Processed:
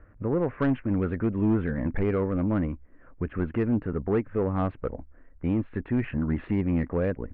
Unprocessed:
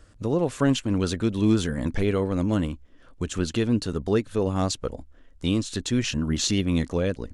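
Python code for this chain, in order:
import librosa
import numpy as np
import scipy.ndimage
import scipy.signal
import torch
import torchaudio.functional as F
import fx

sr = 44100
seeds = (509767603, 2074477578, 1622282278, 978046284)

y = scipy.signal.sosfilt(scipy.signal.butter(8, 2200.0, 'lowpass', fs=sr, output='sos'), x)
y = 10.0 ** (-17.0 / 20.0) * np.tanh(y / 10.0 ** (-17.0 / 20.0))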